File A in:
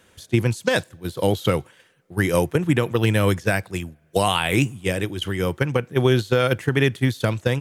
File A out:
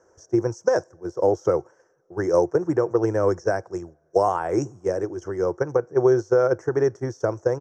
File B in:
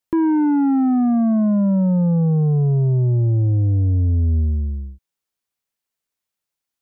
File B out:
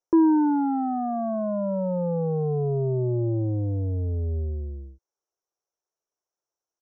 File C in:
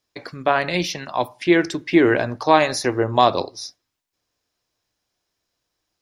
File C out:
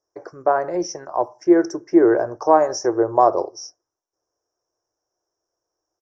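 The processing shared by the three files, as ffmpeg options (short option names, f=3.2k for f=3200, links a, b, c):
-af "firequalizer=gain_entry='entry(130,0);entry(240,-5);entry(340,13);entry(670,12);entry(1500,4);entry(2500,-20);entry(3900,-29);entry(5600,13);entry(10000,-25)':delay=0.05:min_phase=1,volume=-10dB"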